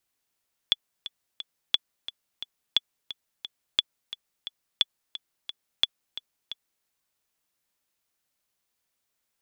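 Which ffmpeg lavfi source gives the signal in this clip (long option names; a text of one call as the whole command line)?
ffmpeg -f lavfi -i "aevalsrc='pow(10,(-6.5-15*gte(mod(t,3*60/176),60/176))/20)*sin(2*PI*3430*mod(t,60/176))*exp(-6.91*mod(t,60/176)/0.03)':duration=6.13:sample_rate=44100" out.wav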